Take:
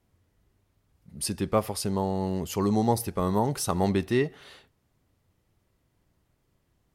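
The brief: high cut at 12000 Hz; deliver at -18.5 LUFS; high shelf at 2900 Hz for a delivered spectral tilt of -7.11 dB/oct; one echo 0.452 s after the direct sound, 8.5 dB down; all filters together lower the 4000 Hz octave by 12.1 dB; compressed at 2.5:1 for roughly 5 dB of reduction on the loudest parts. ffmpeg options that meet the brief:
-af "lowpass=12k,highshelf=f=2.9k:g=-8,equalizer=f=4k:t=o:g=-9,acompressor=threshold=-27dB:ratio=2.5,aecho=1:1:452:0.376,volume=13.5dB"

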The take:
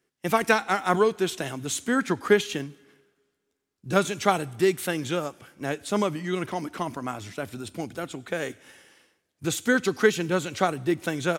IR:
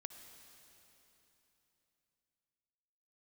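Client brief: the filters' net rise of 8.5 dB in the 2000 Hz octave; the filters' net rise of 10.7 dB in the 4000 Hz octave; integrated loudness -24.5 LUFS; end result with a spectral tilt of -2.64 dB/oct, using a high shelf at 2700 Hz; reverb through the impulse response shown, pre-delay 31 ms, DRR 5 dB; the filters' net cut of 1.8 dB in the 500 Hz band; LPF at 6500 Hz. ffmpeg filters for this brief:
-filter_complex "[0:a]lowpass=6.5k,equalizer=f=500:t=o:g=-3,equalizer=f=2k:t=o:g=7.5,highshelf=f=2.7k:g=8.5,equalizer=f=4k:t=o:g=4.5,asplit=2[a][b];[1:a]atrim=start_sample=2205,adelay=31[c];[b][c]afir=irnorm=-1:irlink=0,volume=-0.5dB[d];[a][d]amix=inputs=2:normalize=0,volume=-3dB"

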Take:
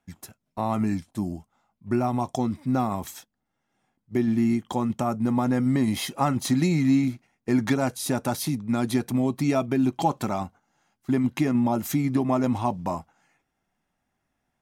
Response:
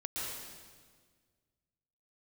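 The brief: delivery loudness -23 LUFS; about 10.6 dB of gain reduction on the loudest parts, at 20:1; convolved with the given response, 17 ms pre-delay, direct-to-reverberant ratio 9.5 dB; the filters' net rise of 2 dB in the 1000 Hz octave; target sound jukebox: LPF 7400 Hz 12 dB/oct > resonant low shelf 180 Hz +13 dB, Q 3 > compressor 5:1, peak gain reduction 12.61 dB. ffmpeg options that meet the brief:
-filter_complex "[0:a]equalizer=f=1k:t=o:g=3.5,acompressor=threshold=-26dB:ratio=20,asplit=2[a][b];[1:a]atrim=start_sample=2205,adelay=17[c];[b][c]afir=irnorm=-1:irlink=0,volume=-12dB[d];[a][d]amix=inputs=2:normalize=0,lowpass=7.4k,lowshelf=f=180:t=q:w=3:g=13,acompressor=threshold=-25dB:ratio=5,volume=6.5dB"

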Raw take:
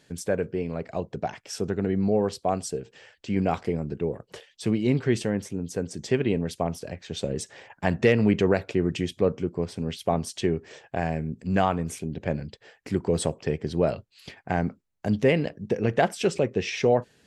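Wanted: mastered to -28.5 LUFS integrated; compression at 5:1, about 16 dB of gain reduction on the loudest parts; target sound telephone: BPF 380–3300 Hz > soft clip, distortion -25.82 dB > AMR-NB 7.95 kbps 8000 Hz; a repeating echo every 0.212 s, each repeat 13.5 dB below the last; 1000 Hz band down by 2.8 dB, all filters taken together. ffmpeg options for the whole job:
-af "equalizer=f=1k:t=o:g=-4,acompressor=threshold=-35dB:ratio=5,highpass=380,lowpass=3.3k,aecho=1:1:212|424:0.211|0.0444,asoftclip=threshold=-26dB,volume=17dB" -ar 8000 -c:a libopencore_amrnb -b:a 7950

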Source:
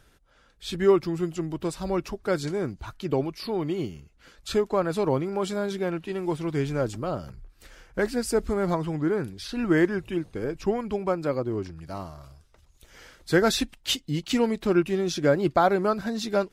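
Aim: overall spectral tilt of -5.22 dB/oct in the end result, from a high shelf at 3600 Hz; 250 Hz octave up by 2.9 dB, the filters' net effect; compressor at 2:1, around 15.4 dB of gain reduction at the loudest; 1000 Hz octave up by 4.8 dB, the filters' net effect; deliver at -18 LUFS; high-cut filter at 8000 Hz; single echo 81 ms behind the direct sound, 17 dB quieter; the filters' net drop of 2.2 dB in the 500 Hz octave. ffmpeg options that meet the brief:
-af "lowpass=8k,equalizer=f=250:t=o:g=6.5,equalizer=f=500:t=o:g=-8,equalizer=f=1k:t=o:g=8.5,highshelf=f=3.6k:g=4,acompressor=threshold=-44dB:ratio=2,aecho=1:1:81:0.141,volume=20.5dB"

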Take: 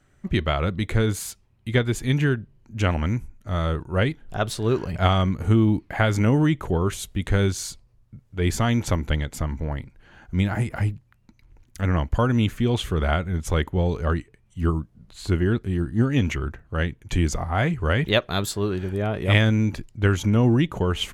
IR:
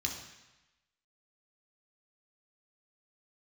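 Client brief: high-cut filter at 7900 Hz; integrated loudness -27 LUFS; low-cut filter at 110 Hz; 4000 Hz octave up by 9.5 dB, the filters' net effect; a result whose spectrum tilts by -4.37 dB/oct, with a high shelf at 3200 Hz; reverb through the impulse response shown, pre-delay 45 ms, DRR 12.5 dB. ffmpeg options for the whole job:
-filter_complex "[0:a]highpass=110,lowpass=7.9k,highshelf=f=3.2k:g=8,equalizer=f=4k:t=o:g=7,asplit=2[a][b];[1:a]atrim=start_sample=2205,adelay=45[c];[b][c]afir=irnorm=-1:irlink=0,volume=-15dB[d];[a][d]amix=inputs=2:normalize=0,volume=-4.5dB"

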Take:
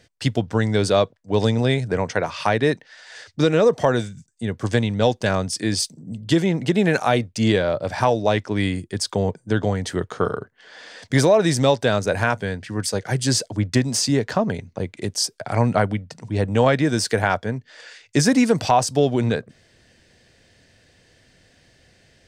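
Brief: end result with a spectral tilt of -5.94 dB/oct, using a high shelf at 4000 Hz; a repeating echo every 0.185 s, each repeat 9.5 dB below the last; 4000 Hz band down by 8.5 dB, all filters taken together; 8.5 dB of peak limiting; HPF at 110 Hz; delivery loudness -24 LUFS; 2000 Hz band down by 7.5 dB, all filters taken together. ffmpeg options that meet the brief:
-af "highpass=110,equalizer=f=2k:t=o:g=-8,highshelf=f=4k:g=-4.5,equalizer=f=4k:t=o:g=-6,alimiter=limit=-14dB:level=0:latency=1,aecho=1:1:185|370|555|740:0.335|0.111|0.0365|0.012,volume=1.5dB"

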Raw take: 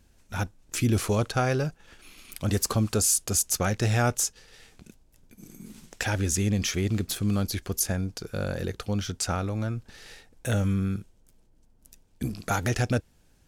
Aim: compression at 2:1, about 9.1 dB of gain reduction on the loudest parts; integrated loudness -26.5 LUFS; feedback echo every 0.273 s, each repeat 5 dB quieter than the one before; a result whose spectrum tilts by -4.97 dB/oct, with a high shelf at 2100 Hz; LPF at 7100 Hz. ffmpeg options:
-af "lowpass=7.1k,highshelf=f=2.1k:g=-3,acompressor=threshold=-37dB:ratio=2,aecho=1:1:273|546|819|1092|1365|1638|1911:0.562|0.315|0.176|0.0988|0.0553|0.031|0.0173,volume=9dB"

